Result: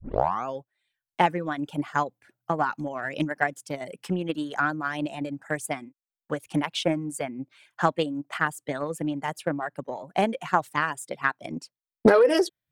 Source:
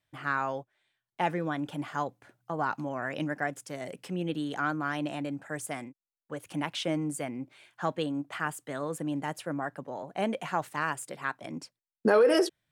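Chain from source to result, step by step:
turntable start at the beginning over 0.46 s
reverb reduction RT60 0.69 s
transient designer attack +8 dB, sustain −1 dB
highs frequency-modulated by the lows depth 0.36 ms
level +2.5 dB

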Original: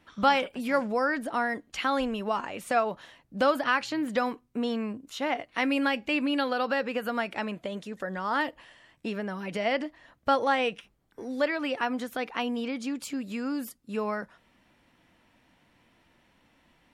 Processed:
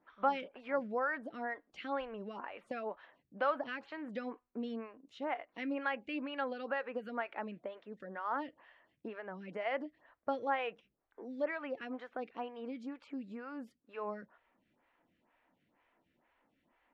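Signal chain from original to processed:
low-pass filter 2,300 Hz 12 dB per octave
low-shelf EQ 200 Hz −9 dB
phaser with staggered stages 2.1 Hz
level −5.5 dB

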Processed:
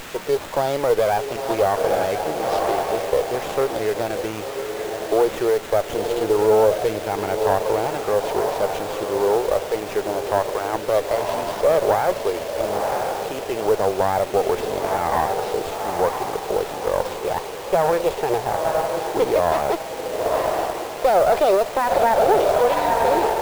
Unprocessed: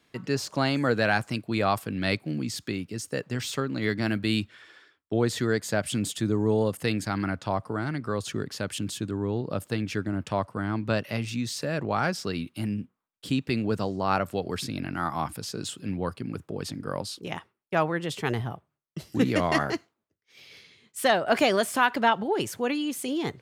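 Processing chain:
octave-band graphic EQ 125/250/500/1,000/4,000/8,000 Hz −9/−10/+6/+7/+9/−11 dB
feedback delay with all-pass diffusion 966 ms, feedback 40%, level −9 dB
brickwall limiter −18.5 dBFS, peak gain reduction 14.5 dB
flat-topped bell 570 Hz +12 dB
bit-depth reduction 6 bits, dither triangular
windowed peak hold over 9 samples

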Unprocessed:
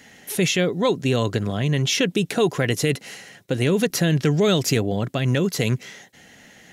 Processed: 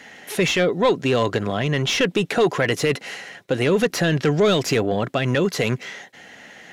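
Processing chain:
mid-hump overdrive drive 15 dB, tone 1,900 Hz, clips at −7 dBFS

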